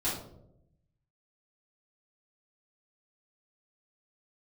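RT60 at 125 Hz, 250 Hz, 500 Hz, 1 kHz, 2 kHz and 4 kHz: 1.4, 1.1, 0.95, 0.60, 0.40, 0.40 seconds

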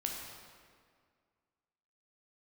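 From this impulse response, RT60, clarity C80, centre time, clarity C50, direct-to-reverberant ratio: 2.0 s, 3.5 dB, 78 ms, 2.0 dB, −0.5 dB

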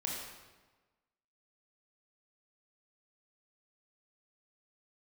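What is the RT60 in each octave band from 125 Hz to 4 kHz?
1.4, 1.3, 1.3, 1.3, 1.1, 0.95 seconds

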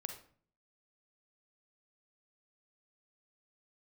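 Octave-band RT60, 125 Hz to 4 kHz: 0.70, 0.65, 0.50, 0.45, 0.40, 0.35 seconds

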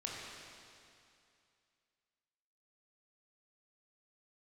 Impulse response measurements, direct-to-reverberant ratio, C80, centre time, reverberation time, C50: −4.0 dB, 0.0 dB, 141 ms, 2.5 s, −1.5 dB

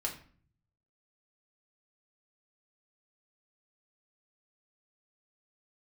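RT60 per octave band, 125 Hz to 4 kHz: 1.2, 0.75, 0.45, 0.45, 0.45, 0.35 seconds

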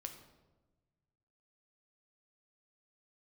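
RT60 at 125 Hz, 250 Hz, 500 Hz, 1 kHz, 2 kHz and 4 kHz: 2.1, 1.6, 1.3, 1.1, 0.80, 0.70 seconds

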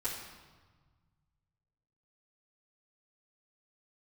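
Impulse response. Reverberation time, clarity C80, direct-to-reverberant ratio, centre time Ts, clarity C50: 1.4 s, 5.0 dB, −11.5 dB, 54 ms, 3.0 dB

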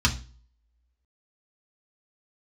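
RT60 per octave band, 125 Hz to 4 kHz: 0.55, 0.45, 0.40, 0.35, 0.35, 0.35 seconds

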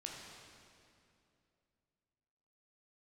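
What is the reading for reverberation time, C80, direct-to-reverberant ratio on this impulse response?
2.6 s, 2.0 dB, −1.5 dB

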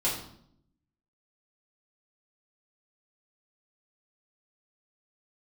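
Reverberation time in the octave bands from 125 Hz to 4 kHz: 1.1, 0.95, 0.70, 0.65, 0.55, 0.55 seconds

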